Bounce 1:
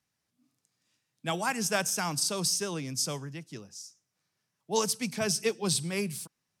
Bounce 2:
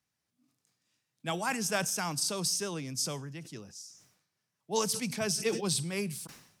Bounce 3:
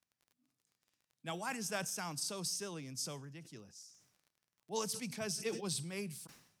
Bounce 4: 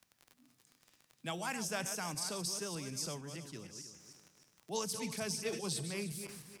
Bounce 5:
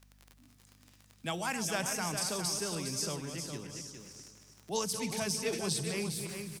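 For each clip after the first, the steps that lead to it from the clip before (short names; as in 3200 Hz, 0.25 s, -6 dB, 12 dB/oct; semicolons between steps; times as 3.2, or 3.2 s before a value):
sustainer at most 80 dB/s; gain -2.5 dB
crackle 25/s -47 dBFS; gain -8 dB
regenerating reverse delay 0.153 s, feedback 46%, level -9.5 dB; three-band squash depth 40%; gain +1 dB
hum 50 Hz, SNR 25 dB; echo 0.409 s -7.5 dB; gain +4 dB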